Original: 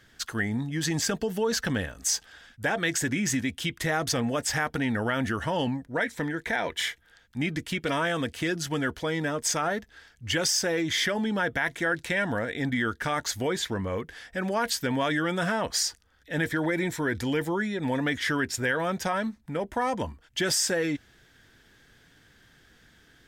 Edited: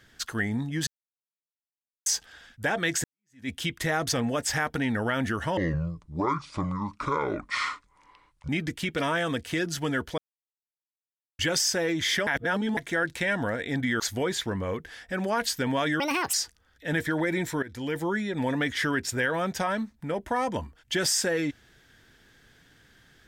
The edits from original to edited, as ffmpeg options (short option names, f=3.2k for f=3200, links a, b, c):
-filter_complex "[0:a]asplit=14[a][b][c][d][e][f][g][h][i][j][k][l][m][n];[a]atrim=end=0.87,asetpts=PTS-STARTPTS,afade=t=out:st=0.866:d=0.004:c=hsin[o];[b]atrim=start=0.87:end=2.06,asetpts=PTS-STARTPTS,volume=0[p];[c]atrim=start=2.06:end=3.04,asetpts=PTS-STARTPTS,afade=t=in:d=0.004:c=hsin,afade=t=out:st=0.976:d=0.004:c=hsin[q];[d]atrim=start=3.04:end=5.574,asetpts=PTS-STARTPTS,afade=t=in:d=0.45:c=exp[r];[e]atrim=start=5.57:end=7.38,asetpts=PTS-STARTPTS,asetrate=27342,aresample=44100[s];[f]atrim=start=7.376:end=9.07,asetpts=PTS-STARTPTS,afade=t=out:st=1.69:d=0.004:c=hsin[t];[g]atrim=start=9.07:end=10.28,asetpts=PTS-STARTPTS,volume=0[u];[h]atrim=start=10.28:end=11.162,asetpts=PTS-STARTPTS,afade=t=in:d=0.004:c=hsin[v];[i]atrim=start=11.158:end=11.662,asetpts=PTS-STARTPTS,areverse[w];[j]atrim=start=11.658:end=12.892[x];[k]atrim=start=13.238:end=15.244[y];[l]atrim=start=15.24:end=15.79,asetpts=PTS-STARTPTS,asetrate=72324,aresample=44100[z];[m]atrim=start=15.786:end=17.08,asetpts=PTS-STARTPTS,afade=t=out:st=1.29:d=0.004:c=hsin:silence=0.141254[aa];[n]atrim=start=17.08,asetpts=PTS-STARTPTS,afade=t=in:d=0.45:silence=0.141254[ab];[o][p][q][r]concat=n=4:v=0:a=1[ac];[ac][s]acrossfade=d=0.004:c1=hsin:c2=hsin[ad];[t][u][v]concat=n=3:v=0:a=1[ae];[ad][ae]acrossfade=d=0.004:c1=hsin:c2=hsin[af];[af][w]acrossfade=d=0.004:c1=hsin:c2=hsin[ag];[ag][x]acrossfade=d=0.004:c1=hsin:c2=hsin[ah];[ah][y]acrossfade=d=0.004:c1=hsin:c2=hsin[ai];[ai][z]acrossfade=d=0.004:c1=hsin:c2=hsin[aj];[aa][ab]concat=n=2:v=0:a=1[ak];[aj][ak]acrossfade=d=0.004:c1=hsin:c2=hsin"